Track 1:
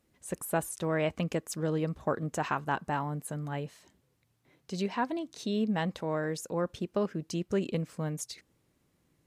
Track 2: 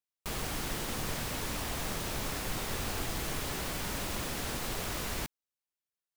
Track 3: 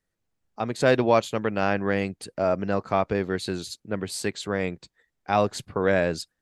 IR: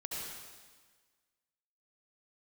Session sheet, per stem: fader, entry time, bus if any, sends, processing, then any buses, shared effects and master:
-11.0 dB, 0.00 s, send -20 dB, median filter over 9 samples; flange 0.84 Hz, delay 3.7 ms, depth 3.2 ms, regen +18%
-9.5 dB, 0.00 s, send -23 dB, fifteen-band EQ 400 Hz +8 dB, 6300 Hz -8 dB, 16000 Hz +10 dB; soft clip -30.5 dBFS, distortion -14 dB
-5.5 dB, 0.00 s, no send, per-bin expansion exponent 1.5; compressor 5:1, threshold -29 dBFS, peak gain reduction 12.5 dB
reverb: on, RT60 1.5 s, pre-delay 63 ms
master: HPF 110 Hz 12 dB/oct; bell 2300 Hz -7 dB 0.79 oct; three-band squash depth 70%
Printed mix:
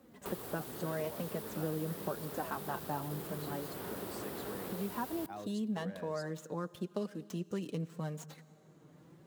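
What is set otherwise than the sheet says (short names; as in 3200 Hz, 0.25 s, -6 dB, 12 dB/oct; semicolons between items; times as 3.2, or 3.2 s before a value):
stem 1 -11.0 dB -> -4.0 dB; stem 3 -5.5 dB -> -17.0 dB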